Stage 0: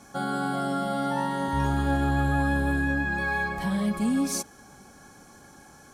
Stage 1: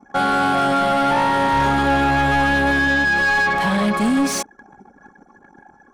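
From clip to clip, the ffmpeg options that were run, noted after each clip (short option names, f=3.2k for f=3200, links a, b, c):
-filter_complex "[0:a]anlmdn=0.0631,asplit=2[a][b];[b]highpass=f=720:p=1,volume=22dB,asoftclip=type=tanh:threshold=-13.5dB[c];[a][c]amix=inputs=2:normalize=0,lowpass=f=2.7k:p=1,volume=-6dB,volume=4dB"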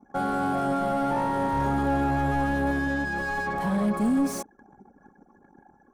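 -af "equalizer=f=3.2k:w=0.46:g=-14.5,volume=-4.5dB"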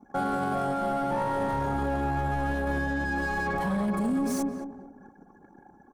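-filter_complex "[0:a]asplit=2[a][b];[b]adelay=218,lowpass=f=850:p=1,volume=-6dB,asplit=2[c][d];[d]adelay=218,lowpass=f=850:p=1,volume=0.32,asplit=2[e][f];[f]adelay=218,lowpass=f=850:p=1,volume=0.32,asplit=2[g][h];[h]adelay=218,lowpass=f=850:p=1,volume=0.32[i];[c][e][g][i]amix=inputs=4:normalize=0[j];[a][j]amix=inputs=2:normalize=0,alimiter=limit=-22.5dB:level=0:latency=1:release=29,volume=1.5dB"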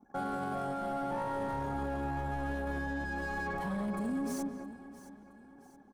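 -af "aecho=1:1:668|1336|2004|2672:0.158|0.0666|0.028|0.0117,volume=-7.5dB"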